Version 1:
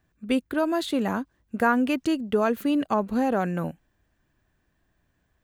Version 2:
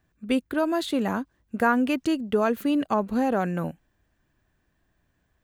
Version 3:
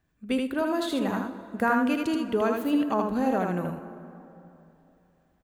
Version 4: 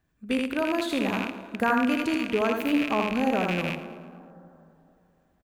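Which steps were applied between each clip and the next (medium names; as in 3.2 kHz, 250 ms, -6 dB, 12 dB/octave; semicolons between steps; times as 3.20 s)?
no audible change
on a send: delay 79 ms -3.5 dB; on the sum: plate-style reverb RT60 3.1 s, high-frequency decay 0.5×, DRR 11 dB; trim -3.5 dB
rattle on loud lows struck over -36 dBFS, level -19 dBFS; feedback delay 111 ms, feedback 50%, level -15 dB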